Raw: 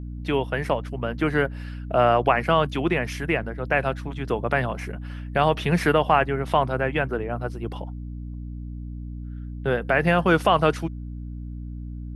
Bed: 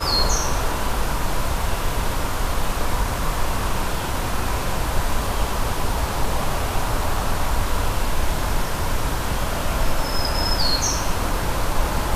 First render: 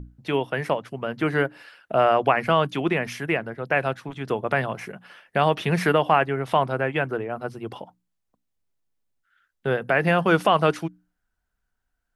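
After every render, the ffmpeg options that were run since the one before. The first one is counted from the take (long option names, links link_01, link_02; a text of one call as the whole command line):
ffmpeg -i in.wav -af "bandreject=frequency=60:width_type=h:width=6,bandreject=frequency=120:width_type=h:width=6,bandreject=frequency=180:width_type=h:width=6,bandreject=frequency=240:width_type=h:width=6,bandreject=frequency=300:width_type=h:width=6" out.wav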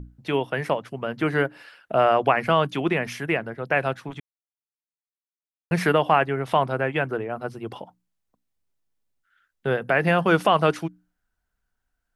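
ffmpeg -i in.wav -filter_complex "[0:a]asplit=3[link_01][link_02][link_03];[link_01]atrim=end=4.2,asetpts=PTS-STARTPTS,afade=type=out:start_time=4.196:duration=0.004:curve=hsin[link_04];[link_02]atrim=start=4.2:end=5.71,asetpts=PTS-STARTPTS,volume=0[link_05];[link_03]atrim=start=5.71,asetpts=PTS-STARTPTS,afade=type=in:duration=0.004:curve=hsin[link_06];[link_04][link_05][link_06]concat=n=3:v=0:a=1" out.wav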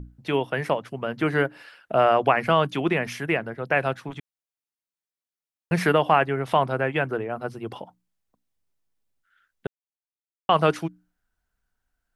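ffmpeg -i in.wav -filter_complex "[0:a]asplit=3[link_01][link_02][link_03];[link_01]atrim=end=9.67,asetpts=PTS-STARTPTS,afade=type=out:start_time=9.666:duration=0.004:curve=hsin[link_04];[link_02]atrim=start=9.67:end=10.49,asetpts=PTS-STARTPTS,volume=0[link_05];[link_03]atrim=start=10.49,asetpts=PTS-STARTPTS,afade=type=in:duration=0.004:curve=hsin[link_06];[link_04][link_05][link_06]concat=n=3:v=0:a=1" out.wav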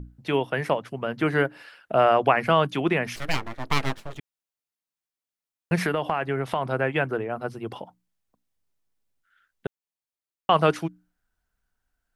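ffmpeg -i in.wav -filter_complex "[0:a]asplit=3[link_01][link_02][link_03];[link_01]afade=type=out:start_time=3.15:duration=0.02[link_04];[link_02]aeval=exprs='abs(val(0))':channel_layout=same,afade=type=in:start_time=3.15:duration=0.02,afade=type=out:start_time=4.17:duration=0.02[link_05];[link_03]afade=type=in:start_time=4.17:duration=0.02[link_06];[link_04][link_05][link_06]amix=inputs=3:normalize=0,asplit=3[link_07][link_08][link_09];[link_07]afade=type=out:start_time=5.75:duration=0.02[link_10];[link_08]acompressor=threshold=-20dB:ratio=6:attack=3.2:release=140:knee=1:detection=peak,afade=type=in:start_time=5.75:duration=0.02,afade=type=out:start_time=6.66:duration=0.02[link_11];[link_09]afade=type=in:start_time=6.66:duration=0.02[link_12];[link_10][link_11][link_12]amix=inputs=3:normalize=0" out.wav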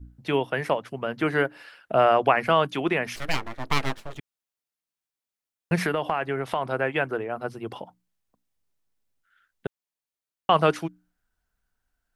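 ffmpeg -i in.wav -af "adynamicequalizer=threshold=0.01:dfrequency=140:dqfactor=0.8:tfrequency=140:tqfactor=0.8:attack=5:release=100:ratio=0.375:range=3:mode=cutabove:tftype=bell" out.wav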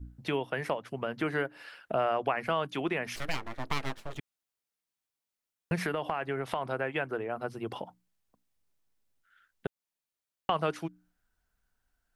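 ffmpeg -i in.wav -af "acompressor=threshold=-33dB:ratio=2" out.wav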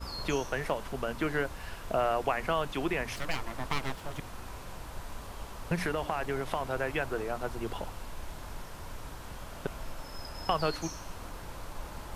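ffmpeg -i in.wav -i bed.wav -filter_complex "[1:a]volume=-20dB[link_01];[0:a][link_01]amix=inputs=2:normalize=0" out.wav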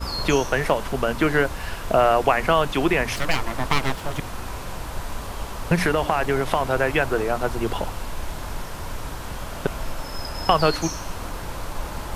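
ffmpeg -i in.wav -af "volume=11dB" out.wav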